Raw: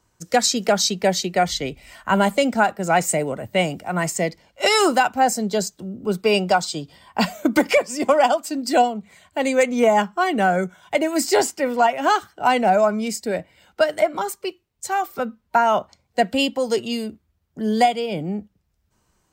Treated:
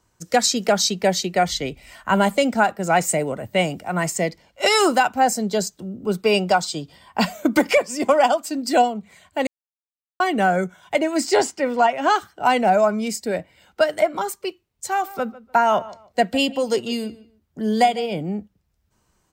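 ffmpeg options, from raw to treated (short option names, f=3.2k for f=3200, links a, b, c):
-filter_complex "[0:a]asettb=1/sr,asplit=3[a][b][c];[a]atrim=end=11.004[d];[b]atrim=start=11:end=12.16,asetpts=PTS-STARTPTS,afade=t=in:d=0.004:c=qsin,afade=t=out:st=1.156:d=0.004:c=qsin,equalizer=f=13k:w=1.2:g=-14[e];[c]atrim=start=12.156[f];[d][e]acrossfade=d=0.004:c1=hsin:c2=qsin[g];[g][f]acrossfade=d=0.004:c1=qsin:c2=hsin,asplit=3[h][i][j];[h]afade=t=out:st=14.93:d=0.02[k];[i]asplit=2[l][m];[m]adelay=149,lowpass=f=3.4k:p=1,volume=-18.5dB,asplit=2[n][o];[o]adelay=149,lowpass=f=3.4k:p=1,volume=0.23[p];[l][n][p]amix=inputs=3:normalize=0,afade=t=in:st=14.93:d=0.02,afade=t=out:st=18.15:d=0.02[q];[j]afade=t=in:st=18.15:d=0.02[r];[k][q][r]amix=inputs=3:normalize=0,asplit=3[s][t][u];[s]atrim=end=9.47,asetpts=PTS-STARTPTS,afade=t=out:st=9.466:d=0.004:c=hsin[v];[t]atrim=start=9.47:end=10.2,asetpts=PTS-STARTPTS,volume=0[w];[u]atrim=start=10.2,asetpts=PTS-STARTPTS,afade=t=in:d=0.004:c=hsin[x];[v][w][x]concat=n=3:v=0:a=1"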